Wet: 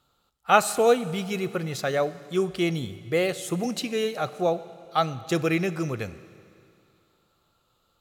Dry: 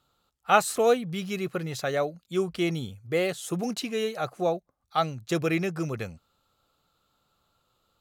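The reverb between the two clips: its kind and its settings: Schroeder reverb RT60 2.5 s, combs from 30 ms, DRR 15 dB; gain +2 dB

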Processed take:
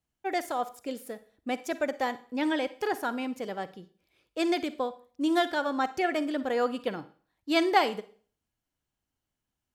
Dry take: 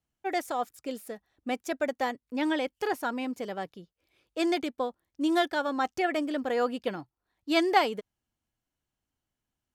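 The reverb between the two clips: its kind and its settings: Schroeder reverb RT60 0.44 s, DRR 14 dB

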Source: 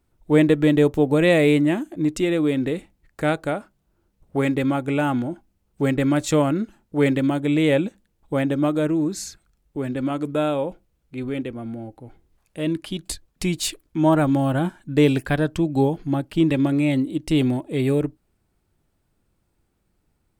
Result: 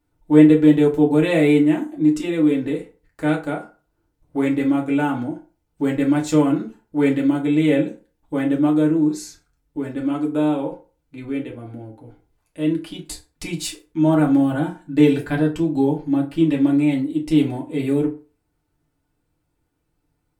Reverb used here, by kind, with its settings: FDN reverb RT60 0.35 s, low-frequency decay 0.85×, high-frequency decay 0.65×, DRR -2.5 dB; gain -6 dB

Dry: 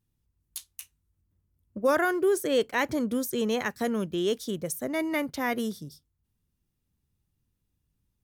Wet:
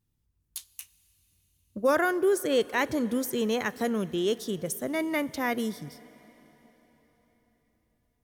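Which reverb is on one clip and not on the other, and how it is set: plate-style reverb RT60 4.5 s, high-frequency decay 0.95×, DRR 18.5 dB

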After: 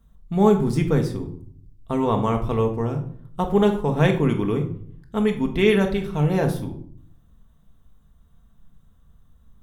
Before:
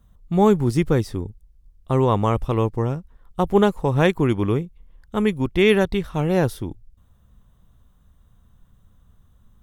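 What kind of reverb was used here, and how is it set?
shoebox room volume 800 m³, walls furnished, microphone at 1.6 m; gain -3.5 dB

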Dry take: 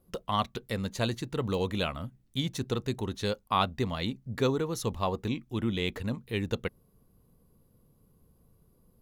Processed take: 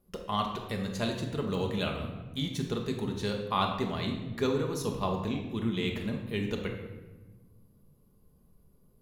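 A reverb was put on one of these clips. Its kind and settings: shoebox room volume 770 m³, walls mixed, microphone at 1.3 m; gain -3.5 dB

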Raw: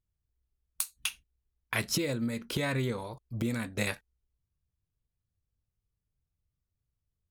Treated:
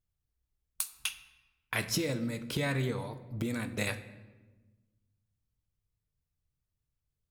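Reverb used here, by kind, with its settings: shoebox room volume 750 m³, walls mixed, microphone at 0.45 m; gain -1.5 dB

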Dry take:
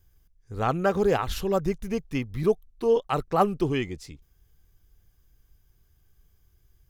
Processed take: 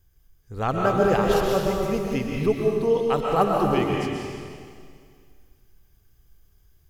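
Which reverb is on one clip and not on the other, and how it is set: digital reverb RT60 2.1 s, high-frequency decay 1×, pre-delay 90 ms, DRR -1.5 dB

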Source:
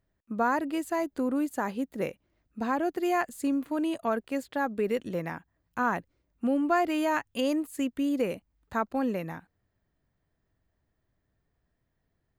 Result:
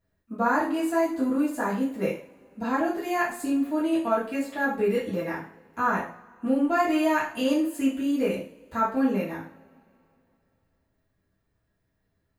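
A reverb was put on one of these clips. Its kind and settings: two-slope reverb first 0.44 s, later 2.8 s, from -27 dB, DRR -9 dB; gain -6 dB

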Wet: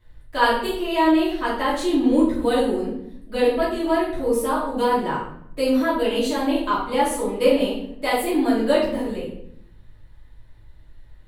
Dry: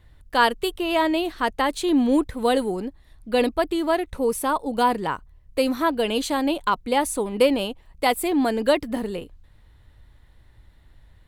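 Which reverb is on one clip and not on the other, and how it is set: shoebox room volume 150 m³, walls mixed, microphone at 2.8 m; gain -10 dB

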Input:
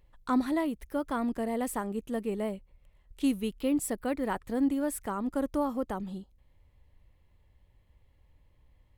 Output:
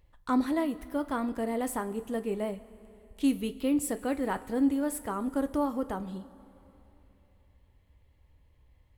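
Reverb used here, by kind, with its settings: two-slope reverb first 0.23 s, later 3.2 s, from -18 dB, DRR 9 dB

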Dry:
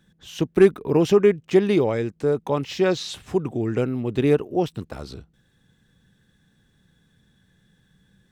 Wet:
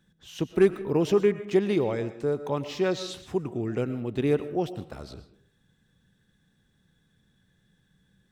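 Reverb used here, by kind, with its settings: digital reverb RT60 0.57 s, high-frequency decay 0.55×, pre-delay 75 ms, DRR 12.5 dB; gain -5.5 dB

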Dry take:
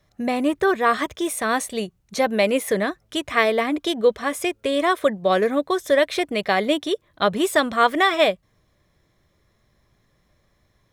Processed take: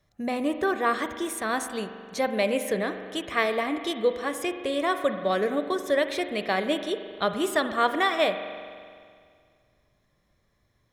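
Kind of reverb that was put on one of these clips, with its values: spring tank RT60 2.1 s, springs 42 ms, chirp 70 ms, DRR 8 dB; gain -6 dB

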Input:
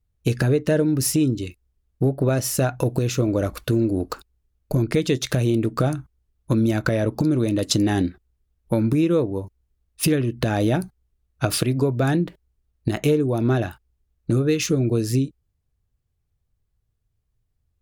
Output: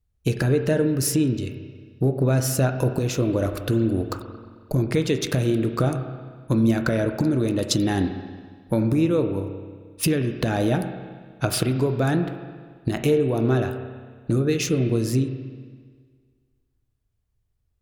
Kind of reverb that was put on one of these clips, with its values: spring tank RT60 1.7 s, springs 31/44 ms, chirp 80 ms, DRR 7 dB; gain -1.5 dB

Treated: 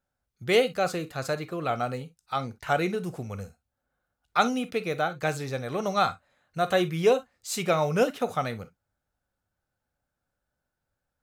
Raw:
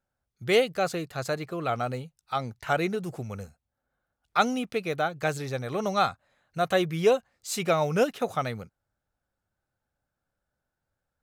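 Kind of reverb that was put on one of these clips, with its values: non-linear reverb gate 80 ms flat, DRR 11.5 dB

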